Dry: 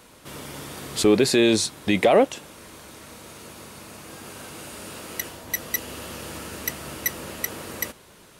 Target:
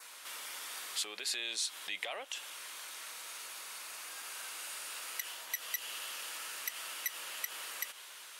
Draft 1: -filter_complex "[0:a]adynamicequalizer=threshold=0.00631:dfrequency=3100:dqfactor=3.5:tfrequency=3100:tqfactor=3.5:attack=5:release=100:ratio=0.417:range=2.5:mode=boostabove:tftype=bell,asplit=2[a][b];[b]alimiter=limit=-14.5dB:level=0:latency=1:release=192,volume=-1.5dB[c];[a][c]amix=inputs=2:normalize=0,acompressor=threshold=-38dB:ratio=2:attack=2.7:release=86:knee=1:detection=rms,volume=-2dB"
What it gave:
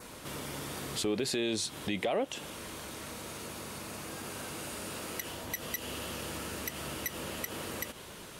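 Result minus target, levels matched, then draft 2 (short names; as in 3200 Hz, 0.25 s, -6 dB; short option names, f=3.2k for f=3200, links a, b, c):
1000 Hz band +3.5 dB
-filter_complex "[0:a]adynamicequalizer=threshold=0.00631:dfrequency=3100:dqfactor=3.5:tfrequency=3100:tqfactor=3.5:attack=5:release=100:ratio=0.417:range=2.5:mode=boostabove:tftype=bell,asplit=2[a][b];[b]alimiter=limit=-14.5dB:level=0:latency=1:release=192,volume=-1.5dB[c];[a][c]amix=inputs=2:normalize=0,acompressor=threshold=-38dB:ratio=2:attack=2.7:release=86:knee=1:detection=rms,highpass=1.3k,volume=-2dB"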